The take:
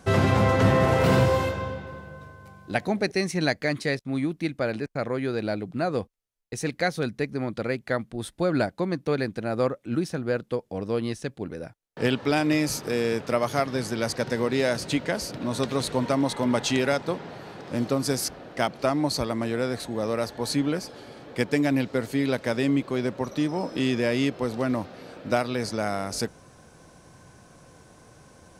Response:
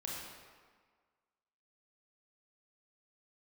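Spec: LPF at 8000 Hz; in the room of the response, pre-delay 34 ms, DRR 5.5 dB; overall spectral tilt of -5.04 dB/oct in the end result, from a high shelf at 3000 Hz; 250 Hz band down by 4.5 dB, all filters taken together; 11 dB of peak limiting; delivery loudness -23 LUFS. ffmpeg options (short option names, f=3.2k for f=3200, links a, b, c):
-filter_complex "[0:a]lowpass=8k,equalizer=f=250:t=o:g=-5.5,highshelf=f=3k:g=-4.5,alimiter=limit=-20dB:level=0:latency=1,asplit=2[a][b];[1:a]atrim=start_sample=2205,adelay=34[c];[b][c]afir=irnorm=-1:irlink=0,volume=-6dB[d];[a][d]amix=inputs=2:normalize=0,volume=8dB"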